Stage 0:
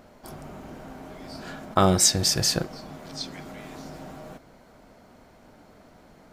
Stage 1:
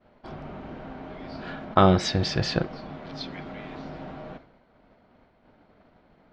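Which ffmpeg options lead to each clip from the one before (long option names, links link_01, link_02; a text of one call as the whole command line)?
ffmpeg -i in.wav -af "lowpass=frequency=3800:width=0.5412,lowpass=frequency=3800:width=1.3066,agate=range=-33dB:threshold=-45dB:ratio=3:detection=peak,volume=2dB" out.wav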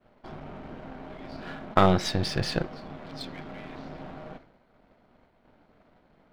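ffmpeg -i in.wav -af "aeval=exprs='if(lt(val(0),0),0.447*val(0),val(0))':channel_layout=same" out.wav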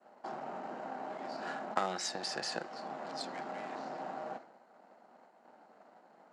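ffmpeg -i in.wav -filter_complex "[0:a]acrossover=split=550|1500[link_01][link_02][link_03];[link_01]acompressor=threshold=-38dB:ratio=4[link_04];[link_02]acompressor=threshold=-46dB:ratio=4[link_05];[link_03]acompressor=threshold=-38dB:ratio=4[link_06];[link_04][link_05][link_06]amix=inputs=3:normalize=0,highpass=frequency=240:width=0.5412,highpass=frequency=240:width=1.3066,equalizer=frequency=280:width_type=q:width=4:gain=-7,equalizer=frequency=410:width_type=q:width=4:gain=-4,equalizer=frequency=800:width_type=q:width=4:gain=7,equalizer=frequency=2300:width_type=q:width=4:gain=-7,equalizer=frequency=3400:width_type=q:width=4:gain=-10,equalizer=frequency=7200:width_type=q:width=4:gain=8,lowpass=frequency=9700:width=0.5412,lowpass=frequency=9700:width=1.3066,volume=2dB" out.wav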